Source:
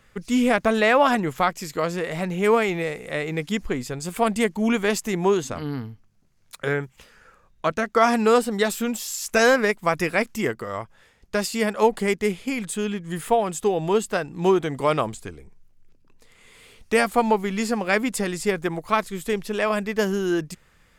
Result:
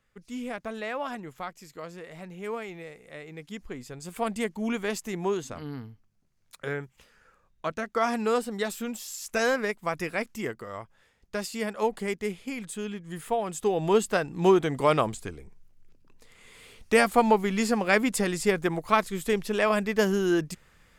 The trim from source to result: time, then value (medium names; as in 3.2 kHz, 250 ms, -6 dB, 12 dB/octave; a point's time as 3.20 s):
3.35 s -15.5 dB
4.23 s -8 dB
13.32 s -8 dB
13.94 s -1 dB